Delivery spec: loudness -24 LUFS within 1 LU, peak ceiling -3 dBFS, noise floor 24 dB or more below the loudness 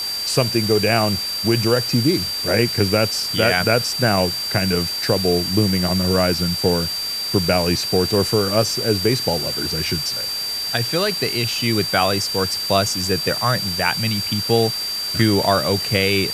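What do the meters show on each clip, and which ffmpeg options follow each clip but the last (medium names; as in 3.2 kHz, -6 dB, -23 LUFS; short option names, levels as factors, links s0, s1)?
steady tone 4.7 kHz; tone level -23 dBFS; noise floor -25 dBFS; noise floor target -43 dBFS; loudness -18.5 LUFS; peak level -1.5 dBFS; loudness target -24.0 LUFS
-> -af "bandreject=f=4700:w=30"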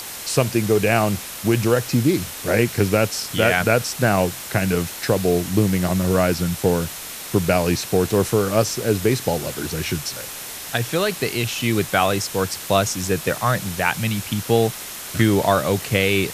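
steady tone not found; noise floor -34 dBFS; noise floor target -45 dBFS
-> -af "afftdn=nr=11:nf=-34"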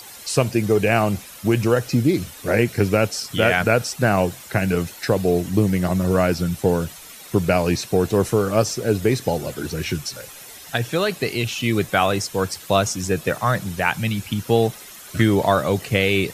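noise floor -41 dBFS; noise floor target -45 dBFS
-> -af "afftdn=nr=6:nf=-41"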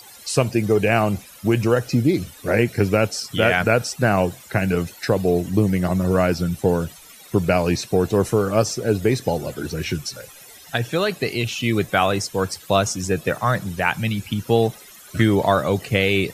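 noise floor -44 dBFS; noise floor target -45 dBFS
-> -af "afftdn=nr=6:nf=-44"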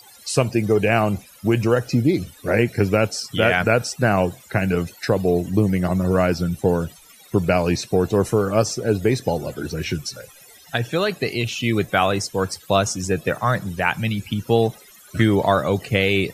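noise floor -48 dBFS; loudness -21.0 LUFS; peak level -2.5 dBFS; loudness target -24.0 LUFS
-> -af "volume=0.708"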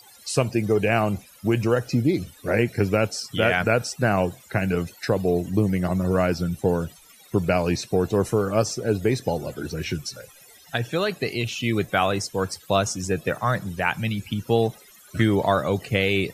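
loudness -24.0 LUFS; peak level -5.5 dBFS; noise floor -51 dBFS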